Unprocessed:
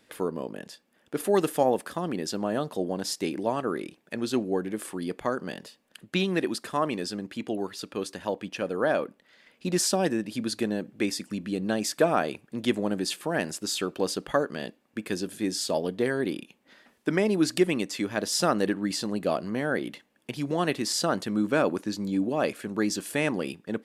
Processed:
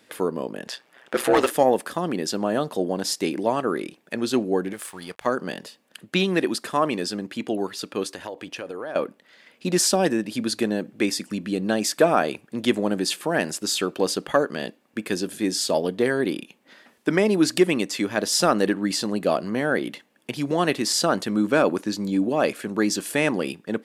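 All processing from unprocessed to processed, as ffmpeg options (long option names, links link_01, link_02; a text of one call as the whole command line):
ffmpeg -i in.wav -filter_complex "[0:a]asettb=1/sr,asplit=3[link_01][link_02][link_03];[link_01]atrim=end=0.674[link_04];[link_02]atrim=start=0.67:end=1.51,asetpts=PTS-STARTPTS,afade=type=in:duration=0.004:curve=qsin,afade=type=out:start_time=0.836:duration=0.004:curve=qsin,tiltshelf=frequency=770:gain=-3,aeval=exprs='val(0)*sin(2*PI*63*n/s)':channel_layout=same,asplit=2[link_05][link_06];[link_06]highpass=frequency=720:poles=1,volume=20dB,asoftclip=type=tanh:threshold=-12dB[link_07];[link_05][link_07]amix=inputs=2:normalize=0,lowpass=frequency=2100:poles=1,volume=-6dB[link_08];[link_03]atrim=start=1.506[link_09];[link_04][link_08]acrossfade=duration=0.004:curve1=hsin:curve2=qsin[link_10];[link_10][link_09]acrossfade=duration=0.004:curve1=qsin:curve2=hsin,asettb=1/sr,asplit=3[link_11][link_12][link_13];[link_11]atrim=end=4.734[link_14];[link_12]atrim=start=4.73:end=5.26,asetpts=PTS-STARTPTS,afade=type=in:duration=0.004:curve=qsin,afade=type=out:start_time=0.526:duration=0.004:curve=qsin,aeval=exprs='sgn(val(0))*max(abs(val(0))-0.00251,0)':channel_layout=same,equalizer=frequency=290:width_type=o:width=1.6:gain=-14[link_15];[link_13]atrim=start=5.256[link_16];[link_14][link_15]acrossfade=duration=0.004:curve1=hsin:curve2=qsin[link_17];[link_17][link_16]acrossfade=duration=0.004:curve1=qsin:curve2=hsin,asettb=1/sr,asplit=3[link_18][link_19][link_20];[link_18]atrim=end=8.074[link_21];[link_19]atrim=start=8.07:end=8.96,asetpts=PTS-STARTPTS,afade=type=in:duration=0.004:curve=qsin,afade=type=out:start_time=0.886:duration=0.004:curve=qsin,equalizer=frequency=200:width_type=o:width=0.38:gain=-10.5,acompressor=threshold=-34dB:ratio=6:attack=3.2:release=140:knee=1:detection=peak[link_22];[link_20]atrim=start=8.956[link_23];[link_21][link_22]acrossfade=duration=0.004:curve1=hsin:curve2=qsin[link_24];[link_24][link_23]acrossfade=duration=0.004:curve1=qsin:curve2=hsin,highpass=frequency=140:poles=1,acontrast=35" out.wav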